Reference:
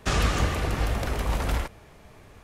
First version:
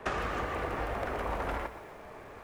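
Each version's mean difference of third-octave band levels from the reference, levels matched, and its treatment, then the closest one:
6.0 dB: three-way crossover with the lows and the highs turned down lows −13 dB, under 310 Hz, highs −17 dB, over 2,200 Hz
downward compressor 10 to 1, threshold −38 dBFS, peak gain reduction 13 dB
feedback echo at a low word length 118 ms, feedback 35%, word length 10 bits, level −11 dB
level +7.5 dB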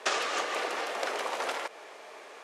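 9.5 dB: low-pass filter 8,000 Hz 12 dB per octave
downward compressor, threshold −30 dBFS, peak gain reduction 11.5 dB
high-pass filter 420 Hz 24 dB per octave
level +7.5 dB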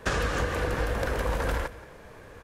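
3.0 dB: thirty-one-band graphic EQ 315 Hz +3 dB, 500 Hz +12 dB, 1,000 Hz +5 dB, 1,600 Hz +10 dB
downward compressor, threshold −24 dBFS, peak gain reduction 8 dB
on a send: single-tap delay 178 ms −18.5 dB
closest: third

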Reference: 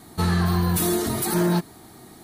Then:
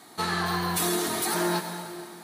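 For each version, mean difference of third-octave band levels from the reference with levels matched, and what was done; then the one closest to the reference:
7.0 dB: meter weighting curve A
dense smooth reverb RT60 2.2 s, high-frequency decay 1×, pre-delay 80 ms, DRR 6.5 dB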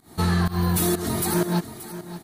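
3.5 dB: fake sidechain pumping 126 BPM, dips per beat 1, −21 dB, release 178 ms
on a send: single-tap delay 580 ms −13.5 dB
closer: second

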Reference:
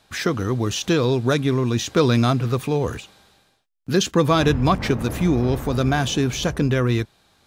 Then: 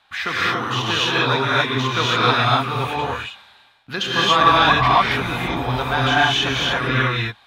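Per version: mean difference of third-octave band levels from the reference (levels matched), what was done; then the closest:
9.5 dB: flat-topped bell 1,700 Hz +15 dB 2.8 octaves
reverb whose tail is shaped and stops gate 310 ms rising, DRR −7 dB
level −12.5 dB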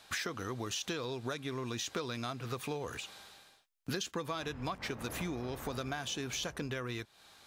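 6.0 dB: low-shelf EQ 440 Hz −12 dB
downward compressor 12 to 1, threshold −37 dBFS, peak gain reduction 20.5 dB
level +2.5 dB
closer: second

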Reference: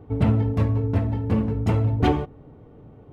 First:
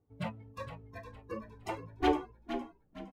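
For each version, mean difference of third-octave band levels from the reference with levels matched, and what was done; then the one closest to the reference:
8.5 dB: noise reduction from a noise print of the clip's start 25 dB
echo with shifted repeats 462 ms, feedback 35%, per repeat −52 Hz, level −9.5 dB
level −5 dB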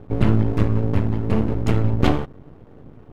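2.5 dB: parametric band 690 Hz −9 dB 0.57 octaves
half-wave rectification
level +7 dB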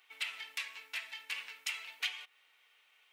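20.5 dB: Chebyshev high-pass filter 2,400 Hz, order 3
downward compressor 4 to 1, threshold −47 dBFS, peak gain reduction 13 dB
level +12 dB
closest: second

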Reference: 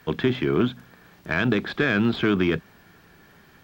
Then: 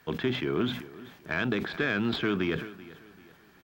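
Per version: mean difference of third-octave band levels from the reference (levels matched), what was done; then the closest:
4.0 dB: low-shelf EQ 260 Hz −4 dB
on a send: repeating echo 386 ms, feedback 40%, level −18.5 dB
on the sum: level that may fall only so fast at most 85 dB per second
level −5.5 dB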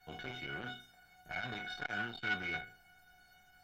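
7.0 dB: peak hold with a decay on every bin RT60 0.44 s
tuned comb filter 740 Hz, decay 0.23 s, harmonics all, mix 100%
saturating transformer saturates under 1,300 Hz
level +8 dB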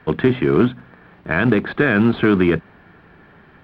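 3.0 dB: low-shelf EQ 320 Hz −3 dB
floating-point word with a short mantissa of 2 bits
high-frequency loss of the air 490 metres
level +9 dB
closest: third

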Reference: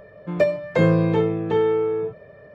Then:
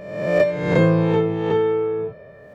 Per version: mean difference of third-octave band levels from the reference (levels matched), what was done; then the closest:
3.5 dB: peak hold with a rise ahead of every peak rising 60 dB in 0.96 s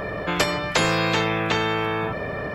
14.0 dB: every bin compressed towards the loudest bin 4 to 1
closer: first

